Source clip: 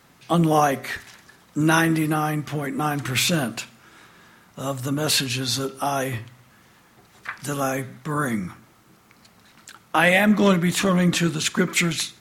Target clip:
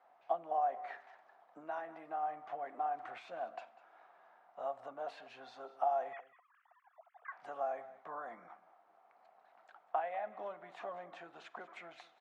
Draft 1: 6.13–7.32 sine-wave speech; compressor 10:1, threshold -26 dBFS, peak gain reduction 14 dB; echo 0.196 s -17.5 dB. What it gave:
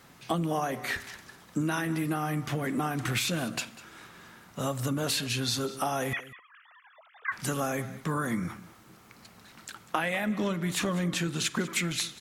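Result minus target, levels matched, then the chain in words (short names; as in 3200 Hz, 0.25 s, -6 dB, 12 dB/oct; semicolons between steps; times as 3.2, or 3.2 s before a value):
1000 Hz band -8.0 dB
6.13–7.32 sine-wave speech; compressor 10:1, threshold -26 dBFS, peak gain reduction 14 dB; ladder band-pass 760 Hz, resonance 75%; echo 0.196 s -17.5 dB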